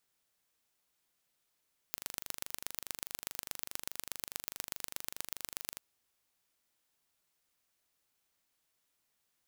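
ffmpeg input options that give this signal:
-f lavfi -i "aevalsrc='0.376*eq(mod(n,1778),0)*(0.5+0.5*eq(mod(n,5334),0))':d=3.87:s=44100"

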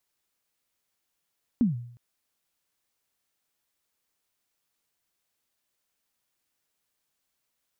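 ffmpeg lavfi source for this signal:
-f lavfi -i "aevalsrc='0.158*pow(10,-3*t/0.63)*sin(2*PI*(260*0.142/log(120/260)*(exp(log(120/260)*min(t,0.142)/0.142)-1)+120*max(t-0.142,0)))':d=0.36:s=44100"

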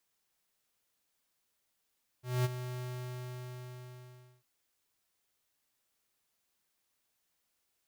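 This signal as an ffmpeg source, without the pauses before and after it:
-f lavfi -i "aevalsrc='0.0398*(2*lt(mod(125*t,1),0.5)-1)':d=2.2:s=44100,afade=t=in:d=0.219,afade=t=out:st=0.219:d=0.025:silence=0.266,afade=t=out:st=0.57:d=1.63"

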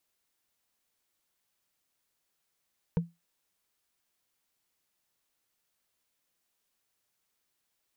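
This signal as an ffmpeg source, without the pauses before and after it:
-f lavfi -i "aevalsrc='0.1*pow(10,-3*t/0.21)*sin(2*PI*169*t)+0.0422*pow(10,-3*t/0.062)*sin(2*PI*465.9*t)+0.0178*pow(10,-3*t/0.028)*sin(2*PI*913.3*t)+0.0075*pow(10,-3*t/0.015)*sin(2*PI*1509.7*t)+0.00316*pow(10,-3*t/0.009)*sin(2*PI*2254.5*t)':d=0.45:s=44100"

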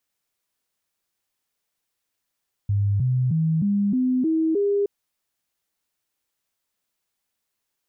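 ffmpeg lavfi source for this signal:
-f lavfi -i "aevalsrc='0.126*clip(min(mod(t,0.31),0.31-mod(t,0.31))/0.005,0,1)*sin(2*PI*101*pow(2,floor(t/0.31)/3)*mod(t,0.31))':d=2.17:s=44100"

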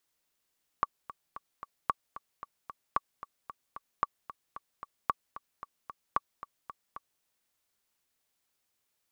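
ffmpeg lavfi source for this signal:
-f lavfi -i "aevalsrc='pow(10,(-12.5-15.5*gte(mod(t,4*60/225),60/225))/20)*sin(2*PI*1140*mod(t,60/225))*exp(-6.91*mod(t,60/225)/0.03)':d=6.4:s=44100"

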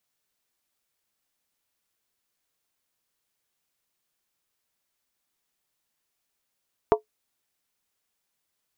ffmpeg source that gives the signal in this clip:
-f lavfi -i "aevalsrc='0.266*pow(10,-3*t/0.12)*sin(2*PI*429*t)+0.178*pow(10,-3*t/0.095)*sin(2*PI*683.8*t)+0.119*pow(10,-3*t/0.082)*sin(2*PI*916.3*t)+0.0794*pow(10,-3*t/0.079)*sin(2*PI*985*t)+0.0531*pow(10,-3*t/0.074)*sin(2*PI*1138.1*t)':d=0.63:s=44100"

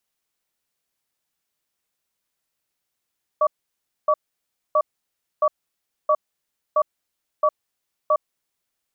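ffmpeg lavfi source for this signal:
-f lavfi -i "aevalsrc='0.141*(sin(2*PI*611*t)+sin(2*PI*1140*t))*clip(min(mod(t,0.67),0.06-mod(t,0.67))/0.005,0,1)':d=5.02:s=44100"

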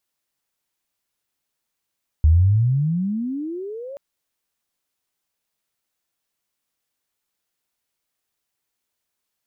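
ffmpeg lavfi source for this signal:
-f lavfi -i "aevalsrc='pow(10,(-9.5-22*t/1.73)/20)*sin(2*PI*73.8*1.73/(35.5*log(2)/12)*(exp(35.5*log(2)/12*t/1.73)-1))':d=1.73:s=44100"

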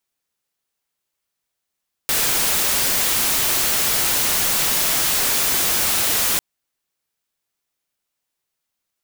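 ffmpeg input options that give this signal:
-f lavfi -i "anoisesrc=c=white:a=0.194:d=4.3:r=44100:seed=1"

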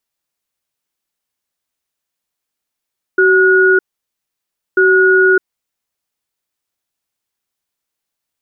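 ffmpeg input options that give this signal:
-f lavfi -i "aevalsrc='0.335*(sin(2*PI*377*t)+sin(2*PI*1450*t))*clip(min(mod(t,1.59),0.61-mod(t,1.59))/0.005,0,1)':d=2.87:s=44100"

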